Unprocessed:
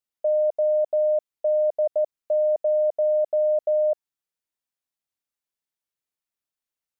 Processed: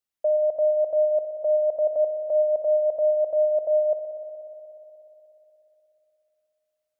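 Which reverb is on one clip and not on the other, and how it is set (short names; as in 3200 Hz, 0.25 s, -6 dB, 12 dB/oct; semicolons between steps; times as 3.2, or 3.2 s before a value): spring tank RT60 3.4 s, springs 60 ms, chirp 65 ms, DRR 5.5 dB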